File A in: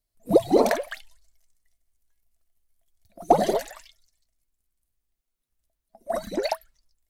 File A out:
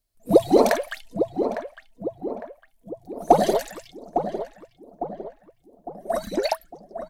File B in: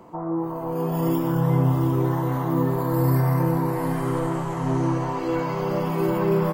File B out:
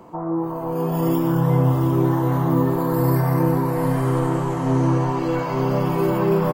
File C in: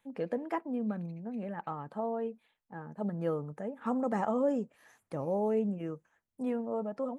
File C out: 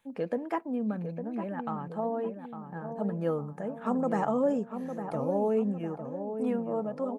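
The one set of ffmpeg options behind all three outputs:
-filter_complex "[0:a]bandreject=f=2k:w=28,asplit=2[a][b];[b]adelay=855,lowpass=f=1.2k:p=1,volume=-7.5dB,asplit=2[c][d];[d]adelay=855,lowpass=f=1.2k:p=1,volume=0.53,asplit=2[e][f];[f]adelay=855,lowpass=f=1.2k:p=1,volume=0.53,asplit=2[g][h];[h]adelay=855,lowpass=f=1.2k:p=1,volume=0.53,asplit=2[i][j];[j]adelay=855,lowpass=f=1.2k:p=1,volume=0.53,asplit=2[k][l];[l]adelay=855,lowpass=f=1.2k:p=1,volume=0.53[m];[c][e][g][i][k][m]amix=inputs=6:normalize=0[n];[a][n]amix=inputs=2:normalize=0,volume=2.5dB"

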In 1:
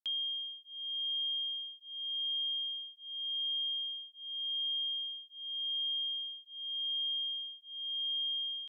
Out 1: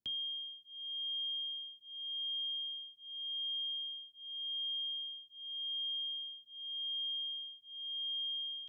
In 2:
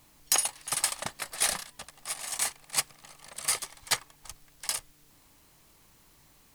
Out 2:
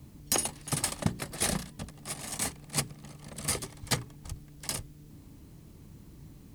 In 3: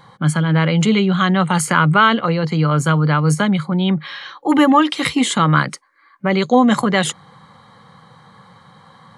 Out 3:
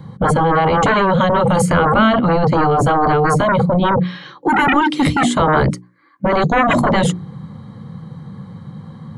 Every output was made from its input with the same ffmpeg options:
-filter_complex "[0:a]highpass=48,bandreject=f=60:t=h:w=6,bandreject=f=120:t=h:w=6,bandreject=f=180:t=h:w=6,bandreject=f=240:t=h:w=6,bandreject=f=300:t=h:w=6,bandreject=f=360:t=h:w=6,bandreject=f=420:t=h:w=6,acrossover=split=340|670|1600[a][b][c][d];[a]aeval=exprs='0.422*sin(PI/2*7.94*val(0)/0.422)':c=same[e];[e][b][c][d]amix=inputs=4:normalize=0,volume=-3.5dB"

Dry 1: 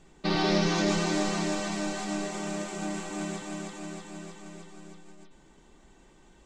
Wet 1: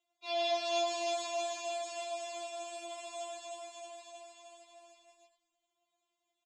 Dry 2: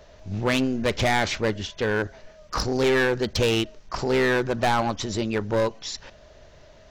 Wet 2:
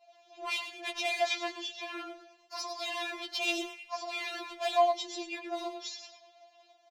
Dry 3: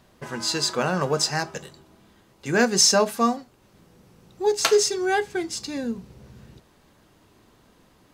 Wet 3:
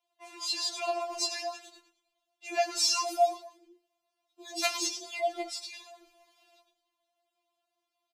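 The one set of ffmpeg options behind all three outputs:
-filter_complex "[0:a]agate=range=-15dB:threshold=-49dB:ratio=16:detection=peak,acrossover=split=250 2900:gain=0.224 1 0.158[a][b][c];[a][b][c]amix=inputs=3:normalize=0,acrossover=split=3100[d][e];[d]asplit=3[f][g][h];[f]bandpass=f=730:t=q:w=8,volume=0dB[i];[g]bandpass=f=1.09k:t=q:w=8,volume=-6dB[j];[h]bandpass=f=2.44k:t=q:w=8,volume=-9dB[k];[i][j][k]amix=inputs=3:normalize=0[l];[e]acontrast=55[m];[l][m]amix=inputs=2:normalize=0,asplit=5[n][o][p][q][r];[o]adelay=106,afreqshift=-93,volume=-9.5dB[s];[p]adelay=212,afreqshift=-186,volume=-18.6dB[t];[q]adelay=318,afreqshift=-279,volume=-27.7dB[u];[r]adelay=424,afreqshift=-372,volume=-36.9dB[v];[n][s][t][u][v]amix=inputs=5:normalize=0,afftfilt=real='re*4*eq(mod(b,16),0)':imag='im*4*eq(mod(b,16),0)':win_size=2048:overlap=0.75,volume=3dB"

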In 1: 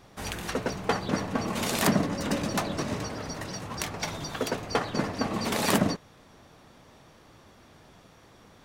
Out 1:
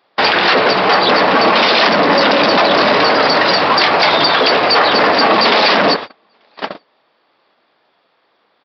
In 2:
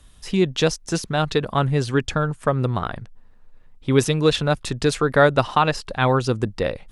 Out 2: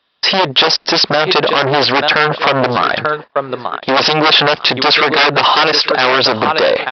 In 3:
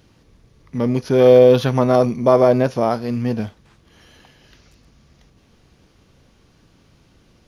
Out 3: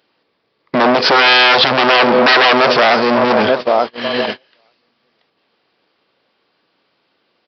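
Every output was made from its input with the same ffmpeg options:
-filter_complex "[0:a]asplit=2[a][b];[b]aecho=0:1:886|1772:0.0891|0.0143[c];[a][c]amix=inputs=2:normalize=0,aeval=exprs='0.141*(abs(mod(val(0)/0.141+3,4)-2)-1)':c=same,agate=range=-33dB:threshold=-41dB:ratio=16:detection=peak,aresample=11025,asoftclip=type=tanh:threshold=-29dB,aresample=44100,highpass=480,alimiter=level_in=32dB:limit=-1dB:release=50:level=0:latency=1,volume=-1dB"

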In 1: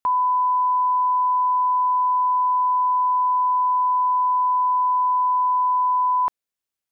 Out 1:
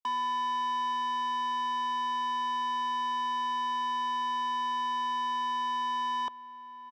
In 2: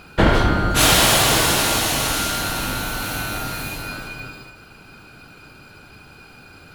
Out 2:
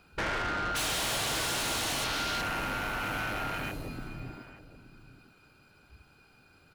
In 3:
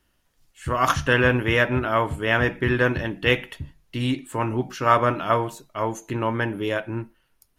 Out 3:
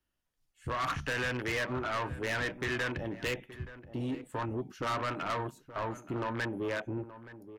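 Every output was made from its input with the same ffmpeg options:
-filter_complex "[0:a]afwtdn=0.0398,acrossover=split=370|1300[a][b][c];[a]acompressor=threshold=-36dB:ratio=4[d];[b]acompressor=threshold=-33dB:ratio=4[e];[c]acompressor=threshold=-25dB:ratio=4[f];[d][e][f]amix=inputs=3:normalize=0,asoftclip=type=tanh:threshold=-28.5dB,asplit=2[g][h];[h]adelay=874.6,volume=-14dB,highshelf=f=4k:g=-19.7[i];[g][i]amix=inputs=2:normalize=0"

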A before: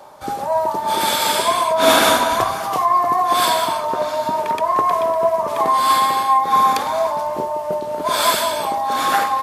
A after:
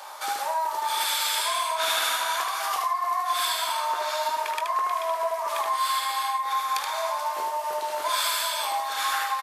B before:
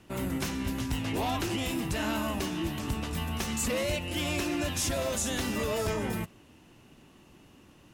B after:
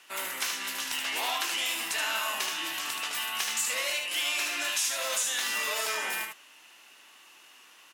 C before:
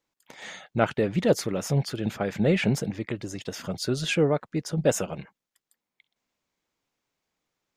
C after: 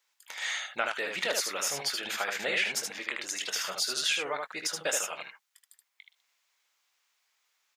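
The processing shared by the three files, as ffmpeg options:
-filter_complex "[0:a]highpass=1.3k,acompressor=threshold=-36dB:ratio=4,asplit=2[a][b];[b]aecho=0:1:21|76:0.316|0.596[c];[a][c]amix=inputs=2:normalize=0,volume=8dB"

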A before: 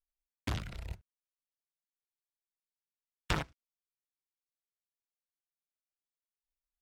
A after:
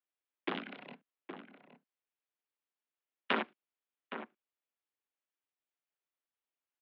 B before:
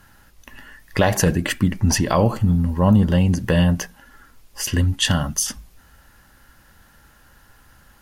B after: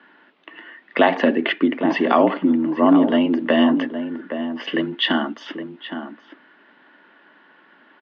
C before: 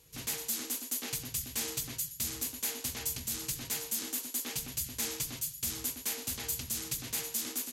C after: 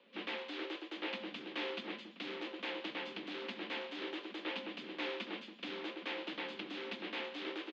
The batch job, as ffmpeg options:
-filter_complex "[0:a]highpass=f=170:t=q:w=0.5412,highpass=f=170:t=q:w=1.307,lowpass=f=3.3k:t=q:w=0.5176,lowpass=f=3.3k:t=q:w=0.7071,lowpass=f=3.3k:t=q:w=1.932,afreqshift=70,asplit=2[a][b];[b]adelay=816.3,volume=-9dB,highshelf=f=4k:g=-18.4[c];[a][c]amix=inputs=2:normalize=0,volume=3dB"

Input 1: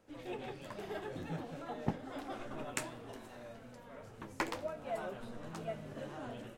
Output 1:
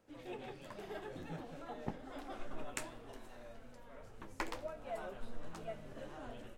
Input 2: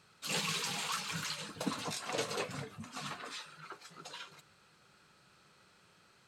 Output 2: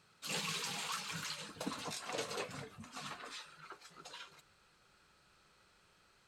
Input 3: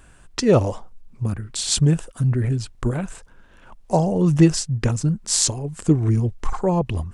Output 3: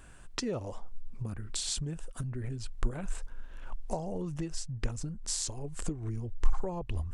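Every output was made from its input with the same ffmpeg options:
-af "acompressor=threshold=-29dB:ratio=6,asubboost=boost=7:cutoff=51,volume=-3.5dB"

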